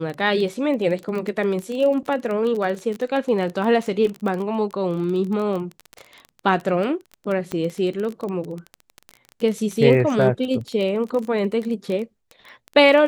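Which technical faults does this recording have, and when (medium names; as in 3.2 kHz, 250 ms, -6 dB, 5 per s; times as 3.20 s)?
crackle 22 per s -25 dBFS
7.52 s: pop -14 dBFS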